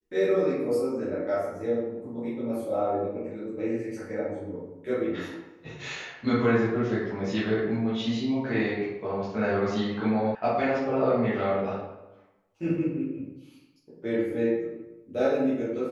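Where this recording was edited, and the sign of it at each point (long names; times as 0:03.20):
0:10.35: cut off before it has died away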